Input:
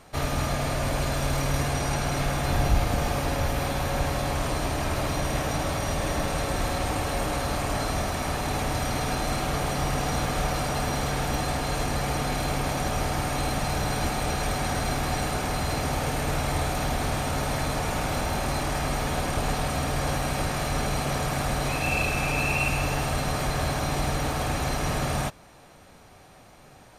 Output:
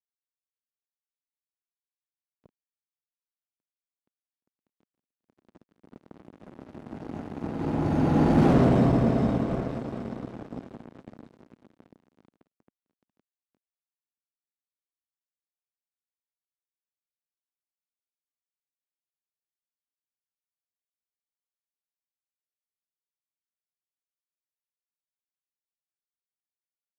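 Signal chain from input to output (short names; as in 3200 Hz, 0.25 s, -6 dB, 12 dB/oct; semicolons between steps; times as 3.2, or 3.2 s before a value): Doppler pass-by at 8.5, 35 m/s, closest 1.8 m; fuzz box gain 46 dB, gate -55 dBFS; band-pass 240 Hz, Q 1.6; gain +4.5 dB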